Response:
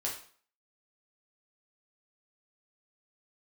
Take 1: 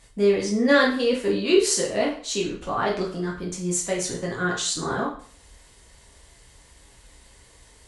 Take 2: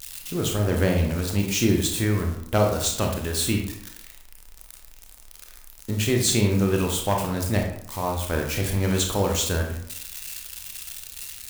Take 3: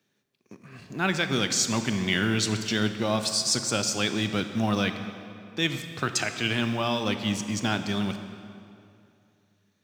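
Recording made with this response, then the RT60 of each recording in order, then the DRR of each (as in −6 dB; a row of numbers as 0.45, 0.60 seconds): 1; 0.45, 0.70, 2.5 seconds; −3.5, 1.5, 8.0 decibels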